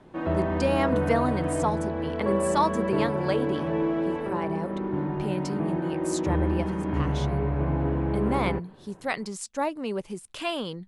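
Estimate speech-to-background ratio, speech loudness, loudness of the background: -3.0 dB, -31.0 LUFS, -28.0 LUFS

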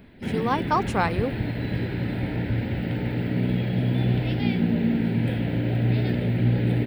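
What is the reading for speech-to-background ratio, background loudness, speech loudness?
-1.0 dB, -25.5 LUFS, -26.5 LUFS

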